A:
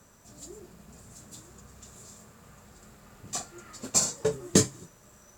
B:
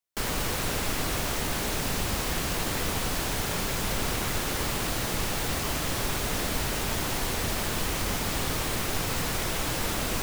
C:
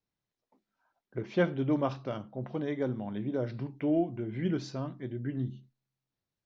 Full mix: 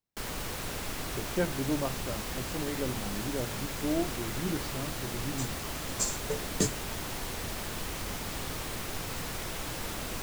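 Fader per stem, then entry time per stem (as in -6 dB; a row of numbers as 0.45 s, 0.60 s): -7.5 dB, -7.5 dB, -3.0 dB; 2.05 s, 0.00 s, 0.00 s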